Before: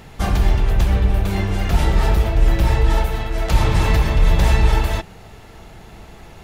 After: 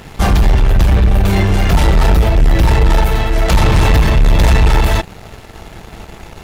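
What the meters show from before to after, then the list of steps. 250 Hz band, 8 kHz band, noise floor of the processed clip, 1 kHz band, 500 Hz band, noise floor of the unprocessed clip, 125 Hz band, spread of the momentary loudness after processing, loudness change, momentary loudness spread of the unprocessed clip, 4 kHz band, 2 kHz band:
+7.0 dB, +7.0 dB, −36 dBFS, +6.5 dB, +6.5 dB, −42 dBFS, +6.0 dB, 4 LU, +6.0 dB, 5 LU, +7.0 dB, +6.5 dB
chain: leveller curve on the samples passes 2
soft clipping −5.5 dBFS, distortion −21 dB
level +2.5 dB

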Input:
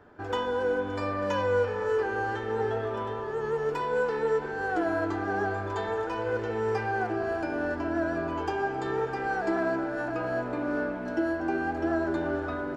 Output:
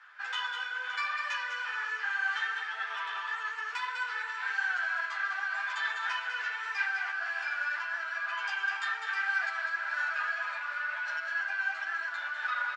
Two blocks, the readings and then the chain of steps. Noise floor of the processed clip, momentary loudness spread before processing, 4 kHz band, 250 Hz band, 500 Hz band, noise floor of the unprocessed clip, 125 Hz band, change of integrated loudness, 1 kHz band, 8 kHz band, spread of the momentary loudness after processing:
−39 dBFS, 4 LU, +6.5 dB, below −40 dB, −27.5 dB, −34 dBFS, below −40 dB, −2.5 dB, −5.0 dB, can't be measured, 4 LU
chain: stylus tracing distortion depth 0.024 ms
tape wow and flutter 22 cents
high-frequency loss of the air 89 metres
in parallel at 0 dB: compressor whose output falls as the input rises −33 dBFS, ratio −0.5
on the sum: high-pass filter 1,500 Hz 24 dB per octave
on a send: single-tap delay 201 ms −6.5 dB
on the sum: string-ensemble chorus
level +7 dB

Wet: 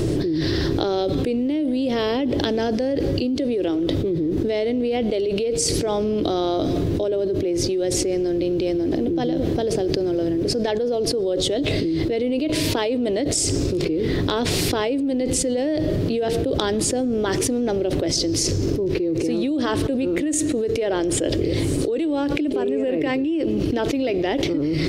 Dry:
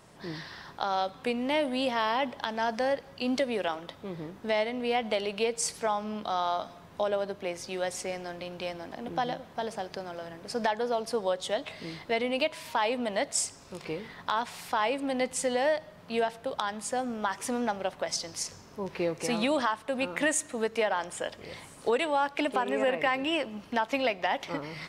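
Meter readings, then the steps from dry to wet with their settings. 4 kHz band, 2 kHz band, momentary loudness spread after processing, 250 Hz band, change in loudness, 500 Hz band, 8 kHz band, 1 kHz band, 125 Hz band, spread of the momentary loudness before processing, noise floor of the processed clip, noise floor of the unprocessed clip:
+8.0 dB, 0.0 dB, 1 LU, +14.5 dB, +9.0 dB, +9.0 dB, +9.0 dB, −1.5 dB, +20.5 dB, 11 LU, −24 dBFS, −52 dBFS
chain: drawn EQ curve 120 Hz 0 dB, 210 Hz −13 dB, 320 Hz +6 dB, 920 Hz −28 dB, 4,300 Hz −14 dB, 8,000 Hz −18 dB
envelope flattener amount 100%
level +4 dB

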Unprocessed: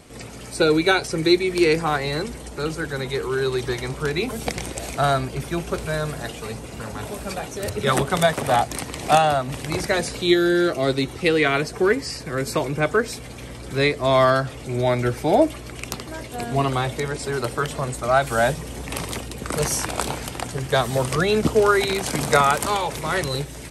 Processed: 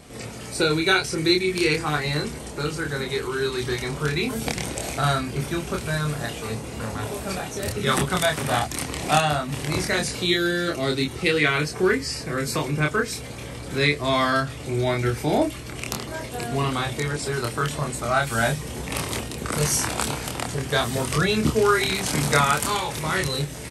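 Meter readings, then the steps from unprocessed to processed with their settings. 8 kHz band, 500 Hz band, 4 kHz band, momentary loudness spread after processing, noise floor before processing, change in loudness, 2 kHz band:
+1.5 dB, −4.5 dB, +1.5 dB, 9 LU, −37 dBFS, −2.0 dB, +0.5 dB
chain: dynamic equaliser 610 Hz, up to −8 dB, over −32 dBFS, Q 0.85
double-tracking delay 27 ms −3 dB

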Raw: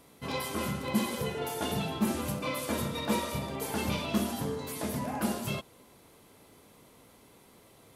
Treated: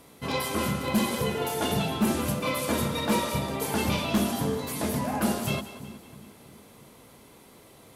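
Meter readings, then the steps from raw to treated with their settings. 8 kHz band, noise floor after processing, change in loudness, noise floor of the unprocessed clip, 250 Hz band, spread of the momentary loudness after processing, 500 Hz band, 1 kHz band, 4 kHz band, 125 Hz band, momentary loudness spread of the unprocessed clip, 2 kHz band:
+5.0 dB, −53 dBFS, +5.0 dB, −58 dBFS, +5.0 dB, 5 LU, +5.0 dB, +5.5 dB, +5.0 dB, +5.0 dB, 4 LU, +5.5 dB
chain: harmonic generator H 5 −8 dB, 7 −15 dB, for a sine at −15 dBFS
echo with a time of its own for lows and highs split 360 Hz, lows 327 ms, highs 184 ms, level −14 dB

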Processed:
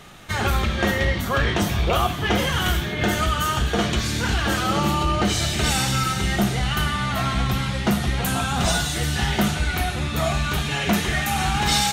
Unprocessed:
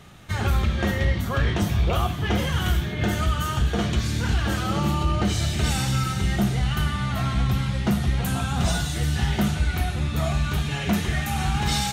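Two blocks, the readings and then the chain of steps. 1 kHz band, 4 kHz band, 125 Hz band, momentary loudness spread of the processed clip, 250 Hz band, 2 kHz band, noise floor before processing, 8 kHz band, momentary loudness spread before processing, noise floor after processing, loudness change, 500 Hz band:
+5.5 dB, +6.0 dB, −1.5 dB, 3 LU, +1.5 dB, +6.0 dB, −29 dBFS, +6.0 dB, 2 LU, −27 dBFS, +2.0 dB, +5.0 dB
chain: parametric band 90 Hz −8.5 dB 2.6 octaves
level +6 dB

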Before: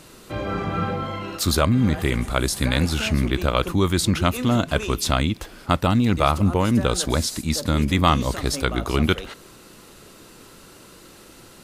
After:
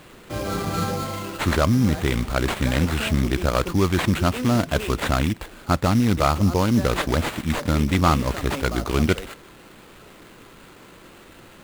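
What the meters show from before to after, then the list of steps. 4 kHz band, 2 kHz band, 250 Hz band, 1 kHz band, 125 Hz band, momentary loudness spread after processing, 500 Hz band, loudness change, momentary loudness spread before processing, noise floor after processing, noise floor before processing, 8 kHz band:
−3.5 dB, +0.5 dB, 0.0 dB, −0.5 dB, 0.0 dB, 7 LU, 0.0 dB, −0.5 dB, 8 LU, −47 dBFS, −47 dBFS, −5.0 dB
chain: sample-rate reduction 5,600 Hz, jitter 20%
slew-rate limiting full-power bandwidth 430 Hz

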